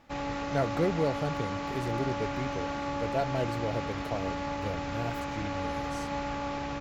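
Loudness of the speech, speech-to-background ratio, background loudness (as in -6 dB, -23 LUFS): -35.0 LUFS, -0.5 dB, -34.5 LUFS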